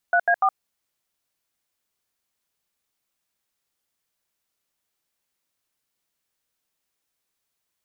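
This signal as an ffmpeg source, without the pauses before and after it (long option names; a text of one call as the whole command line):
ffmpeg -f lavfi -i "aevalsrc='0.126*clip(min(mod(t,0.146),0.067-mod(t,0.146))/0.002,0,1)*(eq(floor(t/0.146),0)*(sin(2*PI*697*mod(t,0.146))+sin(2*PI*1477*mod(t,0.146)))+eq(floor(t/0.146),1)*(sin(2*PI*697*mod(t,0.146))+sin(2*PI*1633*mod(t,0.146)))+eq(floor(t/0.146),2)*(sin(2*PI*770*mod(t,0.146))+sin(2*PI*1209*mod(t,0.146))))':duration=0.438:sample_rate=44100" out.wav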